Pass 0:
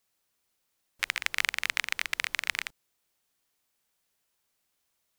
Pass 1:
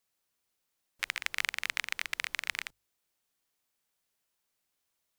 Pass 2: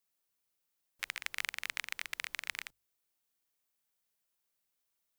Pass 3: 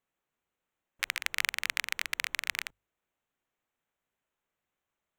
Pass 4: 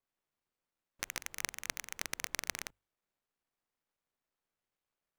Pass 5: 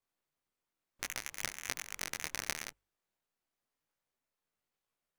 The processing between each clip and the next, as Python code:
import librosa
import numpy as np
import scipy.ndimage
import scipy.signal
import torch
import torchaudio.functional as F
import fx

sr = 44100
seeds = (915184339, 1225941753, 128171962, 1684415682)

y1 = fx.hum_notches(x, sr, base_hz=50, count=2)
y1 = F.gain(torch.from_numpy(y1), -4.0).numpy()
y2 = fx.high_shelf(y1, sr, hz=11000.0, db=7.0)
y2 = F.gain(torch.from_numpy(y2), -5.5).numpy()
y3 = fx.wiener(y2, sr, points=9)
y3 = F.gain(torch.from_numpy(y3), 7.0).numpy()
y4 = fx.dead_time(y3, sr, dead_ms=0.15)
y4 = F.gain(torch.from_numpy(y4), -1.0).numpy()
y5 = fx.detune_double(y4, sr, cents=36)
y5 = F.gain(torch.from_numpy(y5), 4.0).numpy()